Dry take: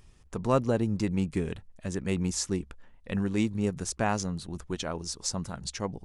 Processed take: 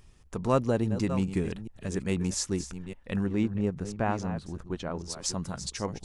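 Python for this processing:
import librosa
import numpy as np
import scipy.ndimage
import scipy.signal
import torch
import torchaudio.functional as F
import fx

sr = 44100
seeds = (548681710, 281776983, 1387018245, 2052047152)

y = fx.reverse_delay(x, sr, ms=419, wet_db=-11)
y = fx.lowpass(y, sr, hz=1600.0, slope=6, at=(3.25, 5.09), fade=0.02)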